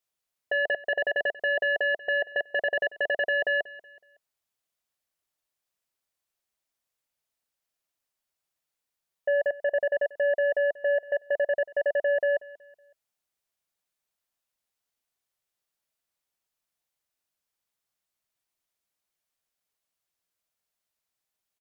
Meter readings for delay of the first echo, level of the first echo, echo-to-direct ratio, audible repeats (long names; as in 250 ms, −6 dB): 186 ms, −19.0 dB, −18.5 dB, 2